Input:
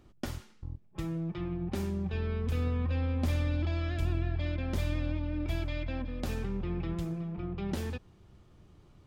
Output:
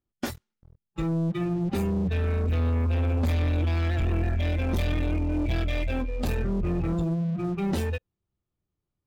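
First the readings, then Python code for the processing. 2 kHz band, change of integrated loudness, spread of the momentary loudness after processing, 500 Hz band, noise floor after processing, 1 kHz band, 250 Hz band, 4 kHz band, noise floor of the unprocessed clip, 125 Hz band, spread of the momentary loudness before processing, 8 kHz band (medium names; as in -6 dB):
+6.5 dB, +7.0 dB, 6 LU, +7.0 dB, under -85 dBFS, +7.5 dB, +7.0 dB, +5.0 dB, -59 dBFS, +6.5 dB, 9 LU, +5.0 dB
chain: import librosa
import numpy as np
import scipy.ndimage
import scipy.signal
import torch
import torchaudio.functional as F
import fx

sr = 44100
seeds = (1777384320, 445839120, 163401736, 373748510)

y = fx.noise_reduce_blind(x, sr, reduce_db=21)
y = fx.leveller(y, sr, passes=3)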